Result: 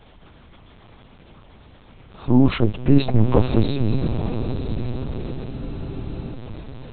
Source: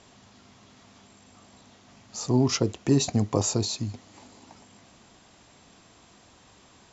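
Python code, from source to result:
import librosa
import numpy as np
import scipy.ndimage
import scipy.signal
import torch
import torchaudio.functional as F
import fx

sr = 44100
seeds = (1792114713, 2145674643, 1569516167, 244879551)

p1 = fx.low_shelf(x, sr, hz=150.0, db=10.5)
p2 = p1 + fx.echo_diffused(p1, sr, ms=930, feedback_pct=54, wet_db=-9.5, dry=0)
p3 = fx.transient(p2, sr, attack_db=-1, sustain_db=4)
p4 = fx.rider(p3, sr, range_db=3, speed_s=2.0)
p5 = p3 + F.gain(torch.from_numpy(p4), 1.0).numpy()
p6 = fx.echo_feedback(p5, sr, ms=457, feedback_pct=30, wet_db=-18)
p7 = fx.lpc_vocoder(p6, sr, seeds[0], excitation='pitch_kept', order=8)
p8 = fx.spec_freeze(p7, sr, seeds[1], at_s=5.53, hold_s=0.8)
y = F.gain(torch.from_numpy(p8), -1.0).numpy()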